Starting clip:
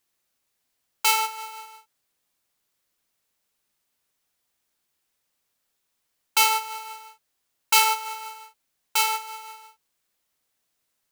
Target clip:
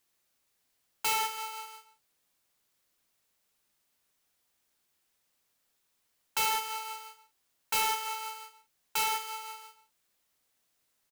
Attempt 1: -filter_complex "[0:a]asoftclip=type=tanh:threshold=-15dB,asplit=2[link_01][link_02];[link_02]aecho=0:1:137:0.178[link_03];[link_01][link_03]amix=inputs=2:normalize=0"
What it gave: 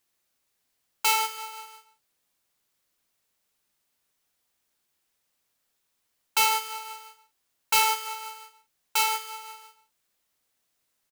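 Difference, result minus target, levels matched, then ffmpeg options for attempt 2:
soft clipping: distortion −8 dB
-filter_complex "[0:a]asoftclip=type=tanh:threshold=-26dB,asplit=2[link_01][link_02];[link_02]aecho=0:1:137:0.178[link_03];[link_01][link_03]amix=inputs=2:normalize=0"

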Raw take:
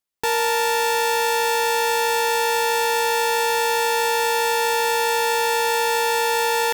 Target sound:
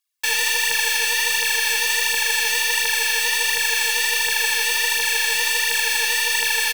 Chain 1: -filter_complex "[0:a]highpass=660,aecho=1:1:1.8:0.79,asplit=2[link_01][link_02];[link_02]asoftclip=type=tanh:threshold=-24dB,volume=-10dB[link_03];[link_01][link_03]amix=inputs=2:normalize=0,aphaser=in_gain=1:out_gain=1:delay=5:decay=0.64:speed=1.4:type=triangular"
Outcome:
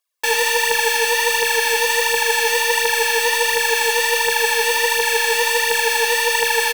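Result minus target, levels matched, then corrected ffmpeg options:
500 Hz band +13.5 dB
-filter_complex "[0:a]highpass=1700,aecho=1:1:1.8:0.79,asplit=2[link_01][link_02];[link_02]asoftclip=type=tanh:threshold=-24dB,volume=-10dB[link_03];[link_01][link_03]amix=inputs=2:normalize=0,aphaser=in_gain=1:out_gain=1:delay=5:decay=0.64:speed=1.4:type=triangular"

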